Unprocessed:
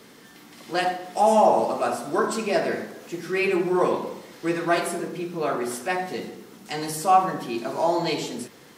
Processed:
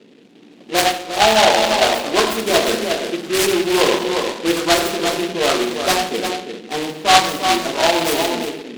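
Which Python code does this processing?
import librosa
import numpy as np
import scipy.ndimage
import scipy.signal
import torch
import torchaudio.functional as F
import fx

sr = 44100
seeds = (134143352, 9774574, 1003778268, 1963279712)

p1 = x + 10.0 ** (-7.0 / 20.0) * np.pad(x, (int(353 * sr / 1000.0), 0))[:len(x)]
p2 = fx.env_lowpass(p1, sr, base_hz=370.0, full_db=-18.5)
p3 = fx.rider(p2, sr, range_db=5, speed_s=0.5)
p4 = p2 + (p3 * librosa.db_to_amplitude(1.5))
p5 = scipy.signal.sosfilt(scipy.signal.butter(2, 250.0, 'highpass', fs=sr, output='sos'), p4)
y = fx.noise_mod_delay(p5, sr, seeds[0], noise_hz=2600.0, depth_ms=0.13)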